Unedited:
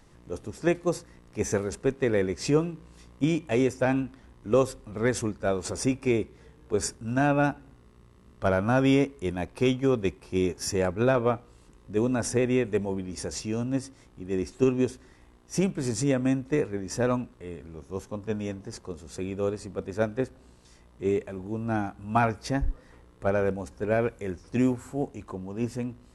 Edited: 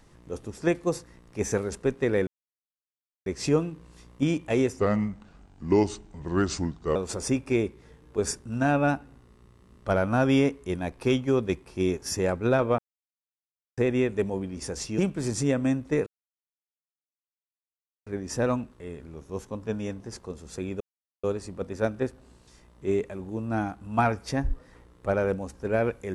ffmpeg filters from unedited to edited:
ffmpeg -i in.wav -filter_complex "[0:a]asplit=9[link_01][link_02][link_03][link_04][link_05][link_06][link_07][link_08][link_09];[link_01]atrim=end=2.27,asetpts=PTS-STARTPTS,afade=type=out:start_time=2.266:duration=0.004:curve=hsin,apad=pad_dur=0.99[link_10];[link_02]atrim=start=2.27:end=3.804,asetpts=PTS-STARTPTS,afade=type=in:duration=0.004:curve=hsin[link_11];[link_03]atrim=start=3.8:end=5.51,asetpts=PTS-STARTPTS,asetrate=34839,aresample=44100[link_12];[link_04]atrim=start=5.506:end=11.34,asetpts=PTS-STARTPTS,afade=type=out:start_time=5.83:duration=0.004:curve=hsin[link_13];[link_05]atrim=start=11.34:end=12.33,asetpts=PTS-STARTPTS,volume=0[link_14];[link_06]atrim=start=12.33:end=13.542,asetpts=PTS-STARTPTS,afade=type=in:duration=0.004:curve=hsin[link_15];[link_07]atrim=start=15.588:end=16.67,asetpts=PTS-STARTPTS,afade=type=out:start_time=1.078:duration=0.004:curve=hsin,apad=pad_dur=2[link_16];[link_08]atrim=start=16.67:end=19.41,asetpts=PTS-STARTPTS,afade=type=in:duration=0.004:curve=hsin,afade=type=out:start_time=2.736:duration=0.004:curve=hsin,apad=pad_dur=0.43[link_17];[link_09]atrim=start=19.41,asetpts=PTS-STARTPTS,afade=type=in:duration=0.004:curve=hsin[link_18];[link_10][link_11]concat=n=2:v=0:a=1[link_19];[link_19][link_12]acrossfade=duration=0.004:curve1=hsin:curve2=hsin[link_20];[link_13][link_14][link_15]concat=n=3:v=0:a=1[link_21];[link_20][link_21]acrossfade=duration=0.004:curve1=hsin:curve2=hsin[link_22];[link_16][link_17][link_18]concat=n=3:v=0:a=1[link_23];[link_22][link_23]acrossfade=duration=0.004:curve1=hsin:curve2=hsin" out.wav

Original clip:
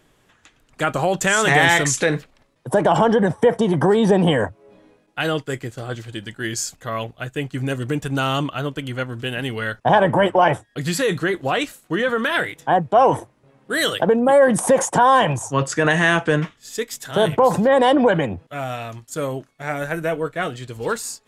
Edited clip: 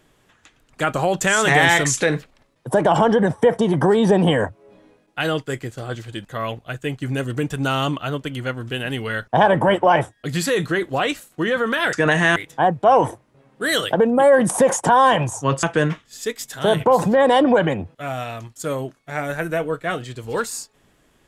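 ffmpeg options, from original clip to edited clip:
ffmpeg -i in.wav -filter_complex "[0:a]asplit=5[link_01][link_02][link_03][link_04][link_05];[link_01]atrim=end=6.252[link_06];[link_02]atrim=start=6.768:end=12.452[link_07];[link_03]atrim=start=15.718:end=16.152[link_08];[link_04]atrim=start=12.448:end=15.722[link_09];[link_05]atrim=start=16.148[link_10];[link_06][link_07]acrossfade=duration=0.004:curve1=hsin:curve2=hsin[link_11];[link_11][link_08]acrossfade=duration=0.004:curve1=hsin:curve2=hsin[link_12];[link_12][link_09]acrossfade=duration=0.004:curve1=hsin:curve2=hsin[link_13];[link_13][link_10]acrossfade=duration=0.004:curve1=hsin:curve2=hsin" out.wav

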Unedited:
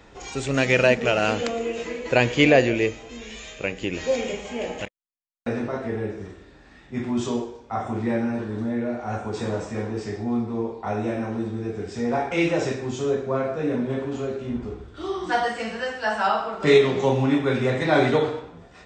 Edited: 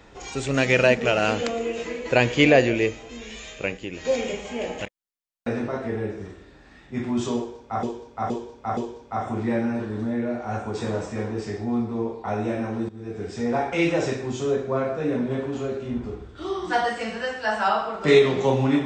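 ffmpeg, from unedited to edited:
ffmpeg -i in.wav -filter_complex "[0:a]asplit=7[link_01][link_02][link_03][link_04][link_05][link_06][link_07];[link_01]atrim=end=3.772[link_08];[link_02]atrim=start=3.768:end=4.052,asetpts=PTS-STARTPTS,volume=-6dB[link_09];[link_03]atrim=start=4.048:end=7.832[link_10];[link_04]atrim=start=7.358:end=7.832[link_11];[link_05]atrim=start=7.358:end=7.832[link_12];[link_06]atrim=start=7.358:end=11.48,asetpts=PTS-STARTPTS,afade=type=out:start_time=4.118:duration=0.004:curve=hsin:silence=0.133352[link_13];[link_07]atrim=start=11.48,asetpts=PTS-STARTPTS,afade=type=in:duration=0.36:silence=0.133352[link_14];[link_08][link_09]acrossfade=duration=0.004:curve1=hsin:curve2=hsin[link_15];[link_15][link_10]acrossfade=duration=0.004:curve1=hsin:curve2=hsin[link_16];[link_16][link_11]acrossfade=duration=0.004:curve1=hsin:curve2=hsin[link_17];[link_17][link_12]acrossfade=duration=0.004:curve1=hsin:curve2=hsin[link_18];[link_13][link_14]concat=n=2:v=0:a=1[link_19];[link_18][link_19]acrossfade=duration=0.004:curve1=hsin:curve2=hsin" out.wav

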